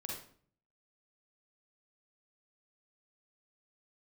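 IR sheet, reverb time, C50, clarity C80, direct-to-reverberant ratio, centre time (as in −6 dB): 0.50 s, 0.0 dB, 6.5 dB, −2.5 dB, 48 ms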